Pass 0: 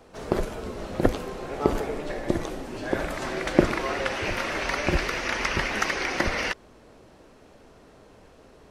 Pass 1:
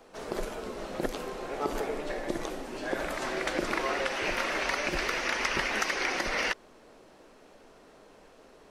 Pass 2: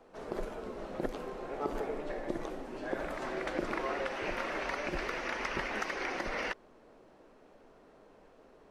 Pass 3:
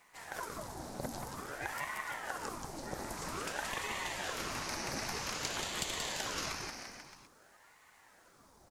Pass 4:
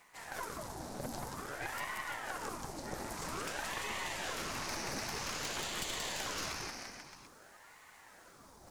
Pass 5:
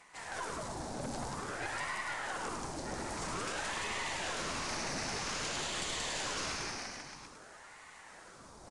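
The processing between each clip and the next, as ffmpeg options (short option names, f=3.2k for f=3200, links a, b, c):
-filter_complex "[0:a]equalizer=f=79:w=0.68:g=-14.5,acrossover=split=3700[a][b];[a]alimiter=limit=-16dB:level=0:latency=1:release=145[c];[c][b]amix=inputs=2:normalize=0,volume=-1dB"
-af "highshelf=f=2.6k:g=-11.5,volume=-3dB"
-af "aexciter=amount=7.6:drive=5.6:freq=4.4k,aecho=1:1:180|342|487.8|619|737.1:0.631|0.398|0.251|0.158|0.1,aeval=exprs='val(0)*sin(2*PI*860*n/s+860*0.75/0.51*sin(2*PI*0.51*n/s))':c=same,volume=-3.5dB"
-af "areverse,acompressor=mode=upward:threshold=-51dB:ratio=2.5,areverse,aeval=exprs='(tanh(50.1*val(0)+0.45)-tanh(0.45))/50.1':c=same,volume=2.5dB"
-af "asoftclip=type=tanh:threshold=-35dB,aecho=1:1:104:0.501,aresample=22050,aresample=44100,volume=3.5dB"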